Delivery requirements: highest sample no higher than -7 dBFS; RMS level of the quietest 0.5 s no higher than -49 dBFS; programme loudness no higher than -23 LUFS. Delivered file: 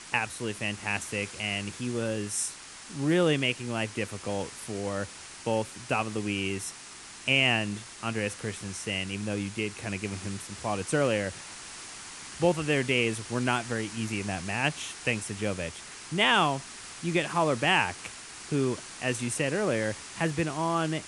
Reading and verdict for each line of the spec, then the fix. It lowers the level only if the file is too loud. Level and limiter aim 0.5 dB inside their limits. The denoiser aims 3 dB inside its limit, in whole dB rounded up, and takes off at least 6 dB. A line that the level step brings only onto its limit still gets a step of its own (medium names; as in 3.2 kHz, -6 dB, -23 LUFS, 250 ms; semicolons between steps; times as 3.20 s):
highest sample -10.0 dBFS: pass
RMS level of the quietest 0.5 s -46 dBFS: fail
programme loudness -29.5 LUFS: pass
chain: noise reduction 6 dB, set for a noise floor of -46 dBFS